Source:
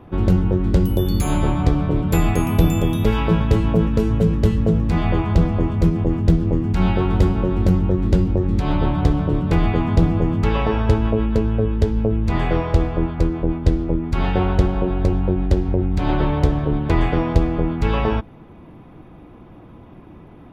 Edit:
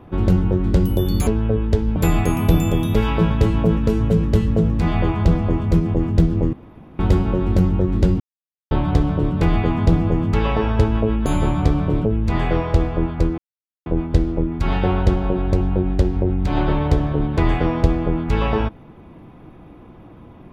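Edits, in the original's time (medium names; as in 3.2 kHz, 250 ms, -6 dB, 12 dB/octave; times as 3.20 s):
1.27–2.06 s: swap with 11.36–12.05 s
6.63–7.09 s: room tone
8.30–8.81 s: mute
13.38 s: insert silence 0.48 s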